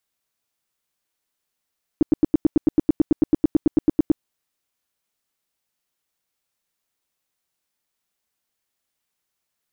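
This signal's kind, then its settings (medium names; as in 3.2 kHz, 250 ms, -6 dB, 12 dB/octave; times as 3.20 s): tone bursts 308 Hz, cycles 5, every 0.11 s, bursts 20, -10 dBFS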